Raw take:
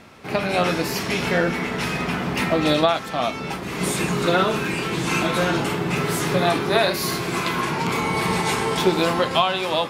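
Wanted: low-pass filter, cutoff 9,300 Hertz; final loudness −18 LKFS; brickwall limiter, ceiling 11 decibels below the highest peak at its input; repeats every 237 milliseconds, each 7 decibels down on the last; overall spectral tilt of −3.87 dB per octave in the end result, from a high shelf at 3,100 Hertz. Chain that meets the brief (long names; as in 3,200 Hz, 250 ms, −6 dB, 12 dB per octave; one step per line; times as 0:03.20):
low-pass filter 9,300 Hz
high-shelf EQ 3,100 Hz +5 dB
brickwall limiter −14 dBFS
repeating echo 237 ms, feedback 45%, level −7 dB
level +4.5 dB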